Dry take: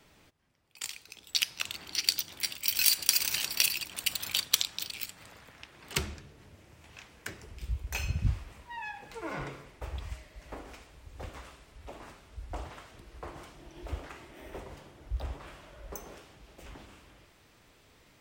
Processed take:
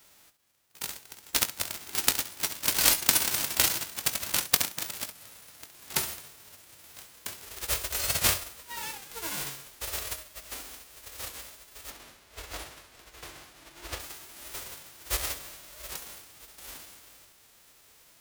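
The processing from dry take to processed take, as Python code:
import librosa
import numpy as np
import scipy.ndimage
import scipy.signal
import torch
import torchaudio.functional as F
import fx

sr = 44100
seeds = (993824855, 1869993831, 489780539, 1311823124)

y = fx.envelope_flatten(x, sr, power=0.1)
y = fx.lowpass(y, sr, hz=3400.0, slope=6, at=(11.9, 14.0))
y = fx.room_early_taps(y, sr, ms=(21, 66), db=(-12.0, -13.5))
y = fx.record_warp(y, sr, rpm=78.0, depth_cents=100.0)
y = y * 10.0 ** (2.5 / 20.0)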